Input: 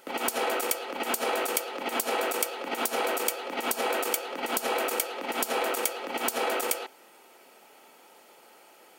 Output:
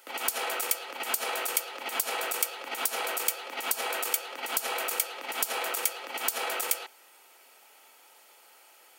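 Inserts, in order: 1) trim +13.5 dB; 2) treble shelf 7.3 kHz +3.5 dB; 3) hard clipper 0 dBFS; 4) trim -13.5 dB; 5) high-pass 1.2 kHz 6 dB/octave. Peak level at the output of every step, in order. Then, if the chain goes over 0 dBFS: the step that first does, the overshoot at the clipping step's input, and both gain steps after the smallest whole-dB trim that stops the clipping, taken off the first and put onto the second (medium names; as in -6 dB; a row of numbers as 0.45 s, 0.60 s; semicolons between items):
+2.5 dBFS, +6.5 dBFS, 0.0 dBFS, -13.5 dBFS, -12.0 dBFS; step 1, 6.5 dB; step 1 +6.5 dB, step 4 -6.5 dB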